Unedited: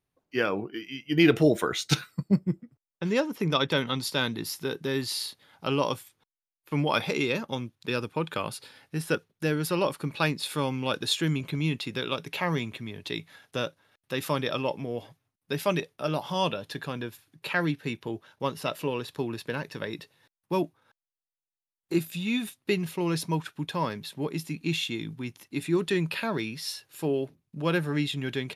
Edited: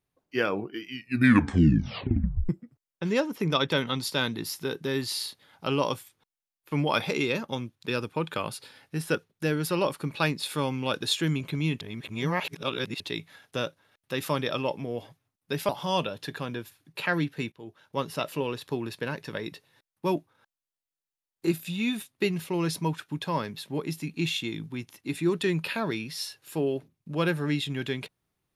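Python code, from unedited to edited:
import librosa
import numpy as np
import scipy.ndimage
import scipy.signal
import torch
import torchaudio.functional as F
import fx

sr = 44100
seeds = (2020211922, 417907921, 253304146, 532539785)

y = fx.edit(x, sr, fx.tape_stop(start_s=0.87, length_s=1.62),
    fx.reverse_span(start_s=11.81, length_s=1.19),
    fx.cut(start_s=15.69, length_s=0.47),
    fx.fade_in_from(start_s=17.99, length_s=0.49, floor_db=-19.0), tone=tone)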